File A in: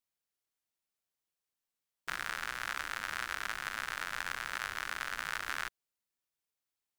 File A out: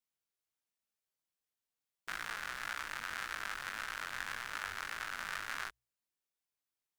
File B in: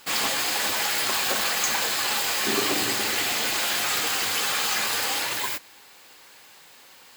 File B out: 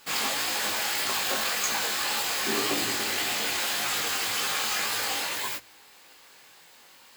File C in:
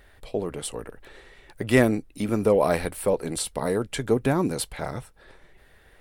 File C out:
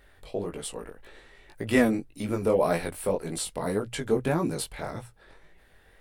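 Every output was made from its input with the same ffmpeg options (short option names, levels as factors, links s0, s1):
-af "bandreject=f=60:t=h:w=6,bandreject=f=120:t=h:w=6,flanger=delay=17.5:depth=4.9:speed=1.8"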